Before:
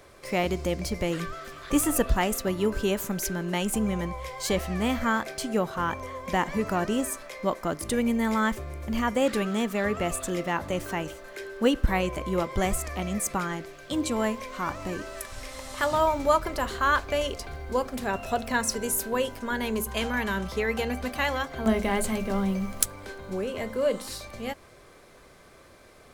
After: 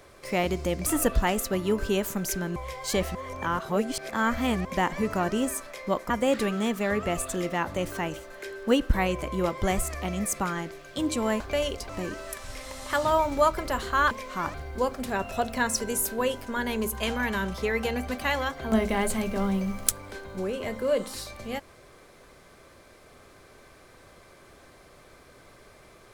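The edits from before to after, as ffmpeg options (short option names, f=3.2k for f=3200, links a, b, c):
-filter_complex "[0:a]asplit=10[a][b][c][d][e][f][g][h][i][j];[a]atrim=end=0.862[k];[b]atrim=start=1.798:end=3.502[l];[c]atrim=start=4.118:end=4.712[m];[d]atrim=start=4.708:end=6.212,asetpts=PTS-STARTPTS,areverse[n];[e]atrim=start=6.208:end=7.662[o];[f]atrim=start=9.038:end=14.342[p];[g]atrim=start=16.988:end=17.482[q];[h]atrim=start=14.768:end=16.992[r];[i]atrim=start=14.338:end=14.772[s];[j]atrim=start=17.478[t];[k][l]acrossfade=d=0.004:c1=hsin:c2=hsin[u];[u][m]acrossfade=d=0.004:c1=hsin:c2=hsin[v];[v][n]acrossfade=d=0.004:c1=hsin:c2=hsin[w];[w][o]acrossfade=d=0.004:c1=hsin:c2=hsin[x];[x][p]acrossfade=d=0.004:c1=hsin:c2=hsin[y];[y][q]acrossfade=d=0.004:c1=hsin:c2=hsin[z];[z][r]acrossfade=d=0.004:c1=hsin:c2=hsin[aa];[aa][s]acrossfade=d=0.004:c1=hsin:c2=hsin[ab];[ab][t]acrossfade=d=0.004:c1=hsin:c2=hsin"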